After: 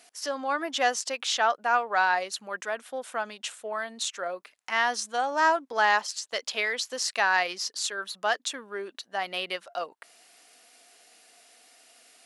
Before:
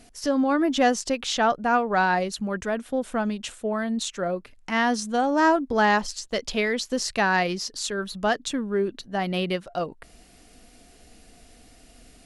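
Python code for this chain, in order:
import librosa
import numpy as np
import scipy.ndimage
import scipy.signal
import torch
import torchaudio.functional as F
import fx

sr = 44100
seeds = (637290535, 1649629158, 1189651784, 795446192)

y = scipy.signal.sosfilt(scipy.signal.butter(2, 750.0, 'highpass', fs=sr, output='sos'), x)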